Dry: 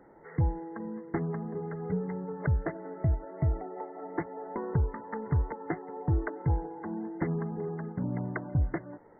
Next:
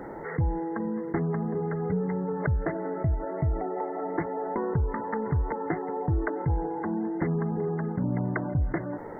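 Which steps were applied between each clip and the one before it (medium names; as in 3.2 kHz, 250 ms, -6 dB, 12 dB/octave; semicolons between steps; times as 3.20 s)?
level flattener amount 50%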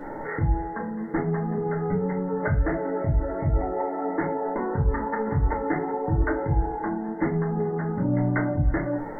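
reverberation RT60 0.30 s, pre-delay 3 ms, DRR -5.5 dB; trim -2 dB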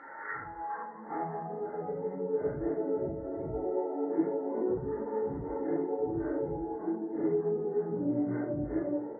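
phase randomisation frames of 200 ms; band-pass sweep 1.5 kHz -> 390 Hz, 0.18–2.43 s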